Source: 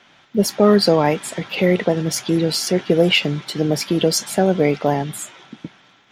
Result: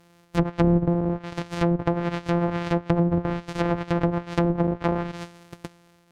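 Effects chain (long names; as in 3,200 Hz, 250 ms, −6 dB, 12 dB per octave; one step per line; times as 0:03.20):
samples sorted by size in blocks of 256 samples
treble cut that deepens with the level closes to 420 Hz, closed at −10.5 dBFS
level −4.5 dB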